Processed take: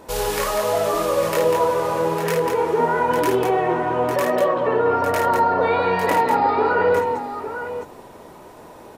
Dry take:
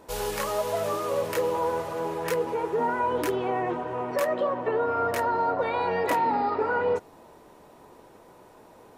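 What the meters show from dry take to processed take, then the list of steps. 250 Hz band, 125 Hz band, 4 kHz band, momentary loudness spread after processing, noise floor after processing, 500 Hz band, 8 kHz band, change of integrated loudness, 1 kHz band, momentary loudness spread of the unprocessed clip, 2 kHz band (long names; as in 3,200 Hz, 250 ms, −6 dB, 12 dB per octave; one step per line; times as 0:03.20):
+7.5 dB, +9.0 dB, +8.0 dB, 7 LU, −43 dBFS, +7.5 dB, +8.0 dB, +7.0 dB, +7.5 dB, 5 LU, +7.5 dB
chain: in parallel at −0.5 dB: brickwall limiter −24 dBFS, peak gain reduction 10 dB
on the sum: multi-tap delay 55/196/853/866 ms −5/−5.5/−8/−18.5 dB
level +1.5 dB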